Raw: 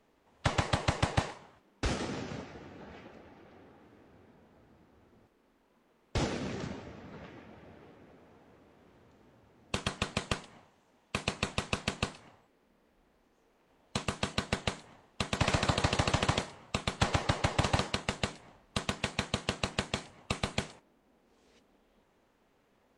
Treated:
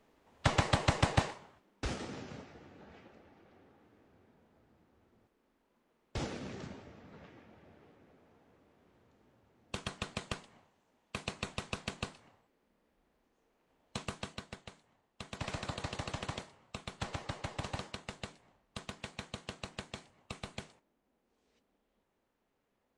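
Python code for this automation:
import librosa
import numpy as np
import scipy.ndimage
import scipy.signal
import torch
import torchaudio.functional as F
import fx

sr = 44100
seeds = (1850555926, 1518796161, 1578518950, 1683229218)

y = fx.gain(x, sr, db=fx.line((1.17, 0.5), (2.03, -6.5), (14.12, -6.5), (14.65, -18.0), (15.45, -11.0)))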